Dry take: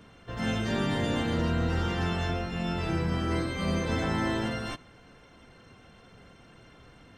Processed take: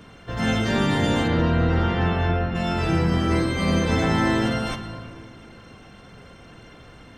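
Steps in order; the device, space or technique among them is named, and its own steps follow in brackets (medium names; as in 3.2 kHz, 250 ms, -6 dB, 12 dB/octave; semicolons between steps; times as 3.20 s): compressed reverb return (on a send at -7 dB: reverberation RT60 2.1 s, pre-delay 12 ms + compression, threshold -28 dBFS, peak gain reduction 6 dB); 1.27–2.54 s: on the sum: low-pass 3.8 kHz -> 2.3 kHz 12 dB/octave; trim +7 dB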